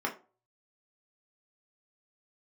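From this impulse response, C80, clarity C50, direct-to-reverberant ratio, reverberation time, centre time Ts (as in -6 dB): 19.0 dB, 12.5 dB, -1.0 dB, 0.35 s, 14 ms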